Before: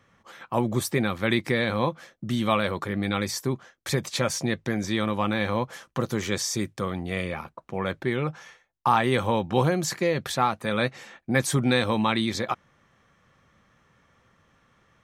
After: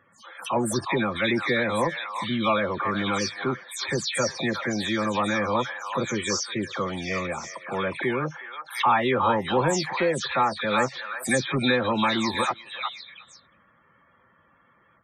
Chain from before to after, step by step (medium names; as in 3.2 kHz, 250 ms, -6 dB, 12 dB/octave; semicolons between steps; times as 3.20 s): delay that grows with frequency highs early, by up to 152 ms; bass shelf 160 Hz -11 dB; in parallel at -4 dB: hard clipper -24 dBFS, distortion -10 dB; on the sum: loudest bins only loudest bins 64; on a send: repeats whose band climbs or falls 364 ms, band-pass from 1.2 kHz, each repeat 1.4 oct, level -3 dB; on the sum: swell ahead of each attack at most 150 dB/s; trim -1 dB